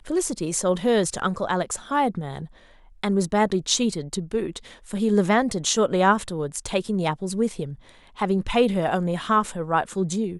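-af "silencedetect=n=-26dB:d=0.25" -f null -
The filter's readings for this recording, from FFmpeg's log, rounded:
silence_start: 2.42
silence_end: 3.04 | silence_duration: 0.62
silence_start: 4.57
silence_end: 4.91 | silence_duration: 0.34
silence_start: 7.65
silence_end: 8.21 | silence_duration: 0.56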